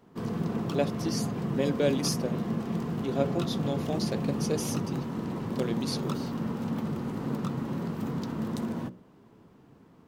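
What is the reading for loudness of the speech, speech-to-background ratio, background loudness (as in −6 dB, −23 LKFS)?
−33.0 LKFS, −0.5 dB, −32.5 LKFS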